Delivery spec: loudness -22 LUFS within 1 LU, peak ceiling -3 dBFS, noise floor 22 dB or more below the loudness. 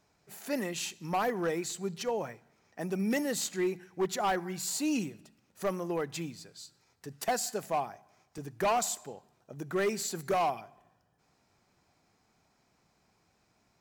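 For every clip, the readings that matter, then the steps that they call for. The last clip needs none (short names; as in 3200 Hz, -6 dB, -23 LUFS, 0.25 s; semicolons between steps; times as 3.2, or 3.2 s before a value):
clipped 1.0%; flat tops at -24.0 dBFS; dropouts 1; longest dropout 1.5 ms; loudness -33.0 LUFS; peak -24.0 dBFS; loudness target -22.0 LUFS
-> clip repair -24 dBFS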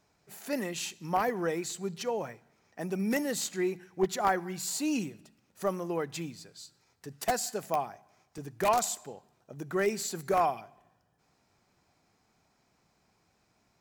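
clipped 0.0%; dropouts 1; longest dropout 1.5 ms
-> interpolate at 8.38, 1.5 ms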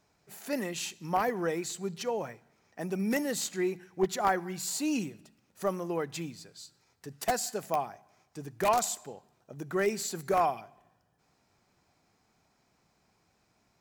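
dropouts 0; loudness -32.0 LUFS; peak -15.0 dBFS; loudness target -22.0 LUFS
-> gain +10 dB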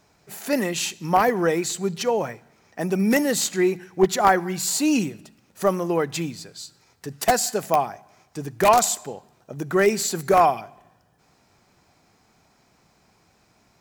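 loudness -22.0 LUFS; peak -5.0 dBFS; noise floor -62 dBFS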